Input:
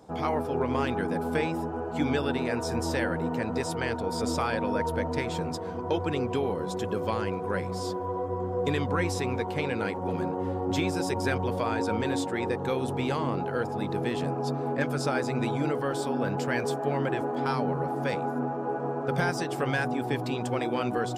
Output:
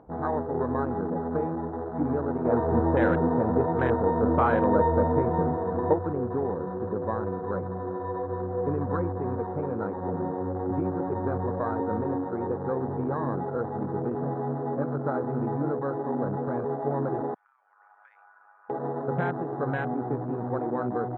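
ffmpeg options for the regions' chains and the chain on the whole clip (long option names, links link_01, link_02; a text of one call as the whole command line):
ffmpeg -i in.wav -filter_complex "[0:a]asettb=1/sr,asplit=3[link_01][link_02][link_03];[link_01]atrim=end=2.454[link_04];[link_02]atrim=start=2.45:end=5.94,asetpts=PTS-STARTPTS,afade=type=in:duration=0.004:curve=qsin,afade=type=out:start_time=3.486:duration=0.004:curve=qsin,acontrast=62,asplit=2[link_05][link_06];[link_06]adelay=39,volume=-11dB[link_07];[link_05][link_07]amix=inputs=2:normalize=0,atrim=end_sample=153909[link_08];[link_03]atrim=start=5.936[link_09];[link_04][link_08]acrossfade=duration=0.004:curve1=hsin:curve2=qsin[link_10];[link_10][link_09]acrossfade=duration=0.004:curve1=qsin:curve2=hsin,asettb=1/sr,asplit=3[link_11][link_12][link_13];[link_11]atrim=end=17.344[link_14];[link_12]atrim=start=17.34:end=18.7,asetpts=PTS-STARTPTS,afade=type=in:duration=0.004:curve=qsin,afade=type=out:start_time=1.356:duration=0.004:curve=qsin,highpass=frequency=1400:width=0.5412,highpass=frequency=1400:width=1.3066,acompressor=threshold=-40dB:ratio=4:attack=3.2:release=140:knee=1:detection=peak,tremolo=f=100:d=0.667[link_15];[link_13]atrim=start=18.696[link_16];[link_14][link_15]acrossfade=duration=0.004:curve1=hsin:curve2=qsin[link_17];[link_17][link_16]acrossfade=duration=0.004:curve1=qsin:curve2=hsin,lowpass=frequency=1500:width=0.5412,lowpass=frequency=1500:width=1.3066,afwtdn=0.0251,acompressor=mode=upward:threshold=-43dB:ratio=2.5" out.wav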